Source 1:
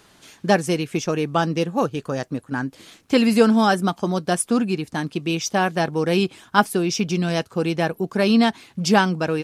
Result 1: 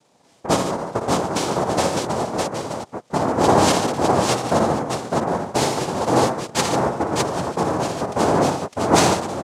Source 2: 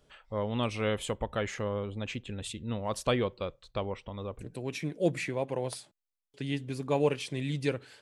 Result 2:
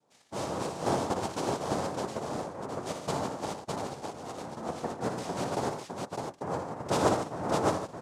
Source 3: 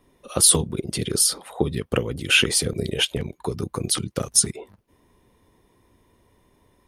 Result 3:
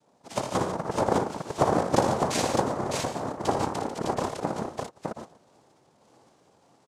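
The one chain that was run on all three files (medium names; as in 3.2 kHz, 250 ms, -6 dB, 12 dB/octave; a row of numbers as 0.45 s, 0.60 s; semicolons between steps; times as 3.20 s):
Bessel low-pass 1.3 kHz, order 8; random-step tremolo; noise-vocoded speech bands 2; on a send: multi-tap echo 58/80/113/145/607 ms -7.5/-9.5/-15.5/-9.5/-3 dB; on the sum: trim +1 dB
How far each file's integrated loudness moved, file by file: +0.5 LU, 0.0 LU, -7.0 LU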